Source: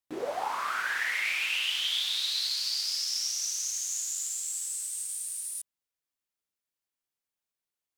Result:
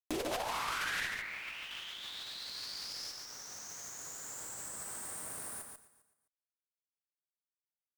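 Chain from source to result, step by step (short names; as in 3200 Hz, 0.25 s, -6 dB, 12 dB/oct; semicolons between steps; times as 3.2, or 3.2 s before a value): bit-crush 8-bit; HPF 62 Hz; high shelf 3300 Hz -6 dB; feedback echo 0.259 s, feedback 21%, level -19 dB; negative-ratio compressor -41 dBFS, ratio -1; band shelf 5500 Hz +10 dB 2.8 oct, from 1.06 s -9 dB, from 3.1 s -15.5 dB; tube stage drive 37 dB, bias 0.55; echo 0.143 s -5.5 dB; gain +8.5 dB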